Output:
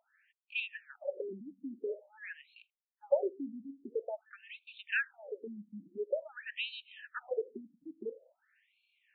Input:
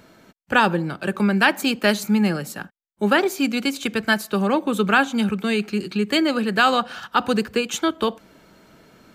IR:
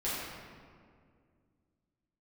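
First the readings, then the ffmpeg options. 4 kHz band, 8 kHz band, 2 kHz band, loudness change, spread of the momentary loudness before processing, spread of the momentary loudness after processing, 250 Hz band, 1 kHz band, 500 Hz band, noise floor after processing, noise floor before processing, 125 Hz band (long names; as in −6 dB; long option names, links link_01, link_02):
−21.5 dB, below −40 dB, −18.0 dB, −18.5 dB, 7 LU, 15 LU, −26.5 dB, −29.5 dB, −13.5 dB, below −85 dBFS, −61 dBFS, below −30 dB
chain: -filter_complex "[0:a]asplit=3[link_01][link_02][link_03];[link_01]bandpass=frequency=530:width_type=q:width=8,volume=0dB[link_04];[link_02]bandpass=frequency=1840:width_type=q:width=8,volume=-6dB[link_05];[link_03]bandpass=frequency=2480:width_type=q:width=8,volume=-9dB[link_06];[link_04][link_05][link_06]amix=inputs=3:normalize=0,afftfilt=real='re*between(b*sr/1024,210*pow(3200/210,0.5+0.5*sin(2*PI*0.48*pts/sr))/1.41,210*pow(3200/210,0.5+0.5*sin(2*PI*0.48*pts/sr))*1.41)':imag='im*between(b*sr/1024,210*pow(3200/210,0.5+0.5*sin(2*PI*0.48*pts/sr))/1.41,210*pow(3200/210,0.5+0.5*sin(2*PI*0.48*pts/sr))*1.41)':win_size=1024:overlap=0.75,volume=1.5dB"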